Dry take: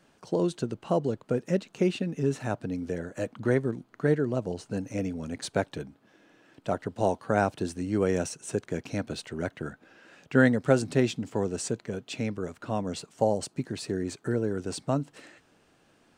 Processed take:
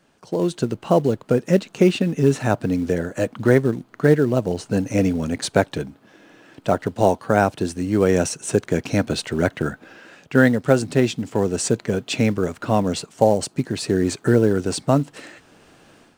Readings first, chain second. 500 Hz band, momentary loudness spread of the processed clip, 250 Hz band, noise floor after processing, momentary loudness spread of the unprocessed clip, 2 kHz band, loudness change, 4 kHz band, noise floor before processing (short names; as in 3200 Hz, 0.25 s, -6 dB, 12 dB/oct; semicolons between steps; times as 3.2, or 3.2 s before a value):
+9.0 dB, 8 LU, +9.0 dB, -56 dBFS, 9 LU, +8.0 dB, +9.0 dB, +10.0 dB, -65 dBFS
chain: in parallel at -9 dB: short-mantissa float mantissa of 2-bit; on the sum: AGC gain up to 11.5 dB; gain -1 dB